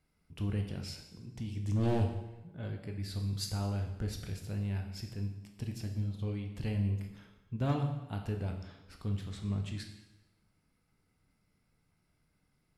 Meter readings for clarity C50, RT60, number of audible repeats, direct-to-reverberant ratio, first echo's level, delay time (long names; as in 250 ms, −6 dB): 7.0 dB, 1.0 s, no echo audible, 3.0 dB, no echo audible, no echo audible